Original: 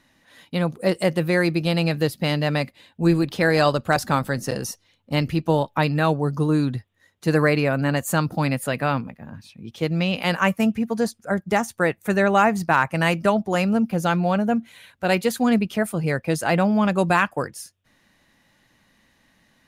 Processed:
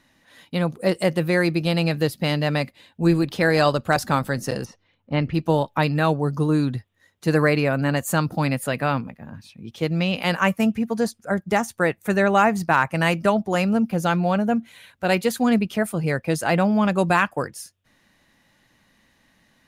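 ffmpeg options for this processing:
-filter_complex "[0:a]asplit=3[s0][s1][s2];[s0]afade=t=out:st=4.64:d=0.02[s3];[s1]lowpass=2500,afade=t=in:st=4.64:d=0.02,afade=t=out:st=5.33:d=0.02[s4];[s2]afade=t=in:st=5.33:d=0.02[s5];[s3][s4][s5]amix=inputs=3:normalize=0"

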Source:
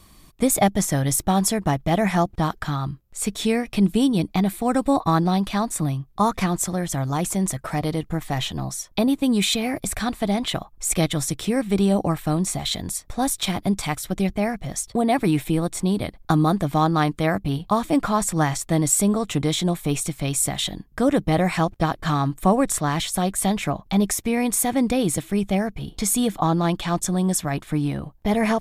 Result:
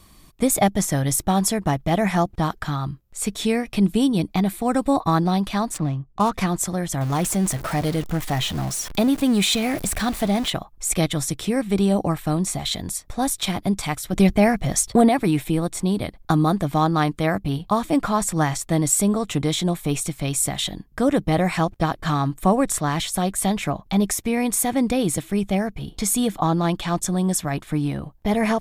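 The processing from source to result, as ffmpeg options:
-filter_complex "[0:a]asettb=1/sr,asplit=3[s0][s1][s2];[s0]atrim=end=5.744[s3];[s1]atrim=start=5.74:end=6.33,asetpts=PTS-STARTPTS,afade=t=in:d=0.004:c=qsin,afade=t=out:st=0.586:d=0.004:c=qsin,adynamicsmooth=sensitivity=6.5:basefreq=1200[s4];[s2]atrim=start=6.326[s5];[s3][s4]acrossfade=d=0.004:c1=hsin:c2=qsin[s6];[s6][s5]acrossfade=d=0.004:c1=qsin:c2=hsin,asettb=1/sr,asplit=3[s7][s8][s9];[s7]atrim=end=7.014[s10];[s8]atrim=start=7.01:end=10.5,asetpts=PTS-STARTPTS,afade=t=in:d=0.004:c=qsin,afade=t=out:st=3.486:d=0.004:c=qsin,aeval=exprs='val(0)+0.5*0.0376*sgn(val(0))':c=same[s11];[s9]atrim=start=10.496[s12];[s10][s11]acrossfade=d=0.004:c1=hsin:c2=qsin[s13];[s13][s12]acrossfade=d=0.004:c1=qsin:c2=hsin,asettb=1/sr,asplit=3[s14][s15][s16];[s14]atrim=end=14.134[s17];[s15]atrim=start=14.13:end=15.09,asetpts=PTS-STARTPTS,afade=t=in:d=0.004:c=qsin,afade=t=out:st=0.956:d=0.004:c=qsin,acontrast=89[s18];[s16]atrim=start=15.086[s19];[s17][s18]acrossfade=d=0.004:c1=hsin:c2=qsin[s20];[s20][s19]acrossfade=d=0.004:c1=qsin:c2=hsin"

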